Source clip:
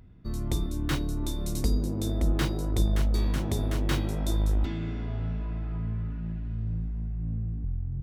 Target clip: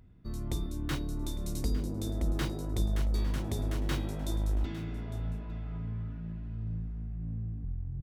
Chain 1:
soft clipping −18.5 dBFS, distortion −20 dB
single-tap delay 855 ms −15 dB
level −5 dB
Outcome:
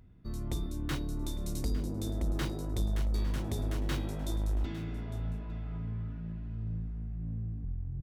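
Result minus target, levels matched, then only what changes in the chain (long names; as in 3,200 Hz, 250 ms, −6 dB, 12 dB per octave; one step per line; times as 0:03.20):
soft clipping: distortion +14 dB
change: soft clipping −10.5 dBFS, distortion −34 dB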